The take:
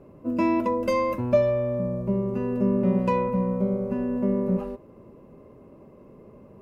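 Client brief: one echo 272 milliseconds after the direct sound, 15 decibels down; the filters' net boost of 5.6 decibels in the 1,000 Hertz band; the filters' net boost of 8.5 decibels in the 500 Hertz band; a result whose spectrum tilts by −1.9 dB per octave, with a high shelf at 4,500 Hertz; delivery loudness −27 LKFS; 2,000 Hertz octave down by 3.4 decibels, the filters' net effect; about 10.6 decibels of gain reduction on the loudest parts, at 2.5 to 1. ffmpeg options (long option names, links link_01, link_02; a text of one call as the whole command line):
ffmpeg -i in.wav -af "equalizer=frequency=500:width_type=o:gain=9,equalizer=frequency=1000:width_type=o:gain=5,equalizer=frequency=2000:width_type=o:gain=-7.5,highshelf=frequency=4500:gain=8.5,acompressor=threshold=-23dB:ratio=2.5,aecho=1:1:272:0.178,volume=-2.5dB" out.wav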